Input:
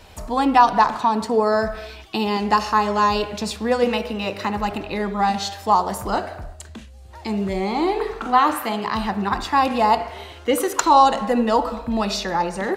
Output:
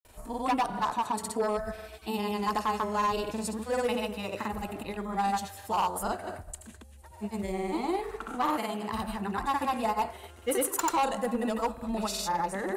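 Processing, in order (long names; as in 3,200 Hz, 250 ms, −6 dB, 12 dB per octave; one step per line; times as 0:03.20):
high shelf with overshoot 7,000 Hz +11 dB, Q 1.5
granular cloud 100 ms, grains 20 per second, pitch spread up and down by 0 semitones
hard clipping −14 dBFS, distortion −14 dB
level −8 dB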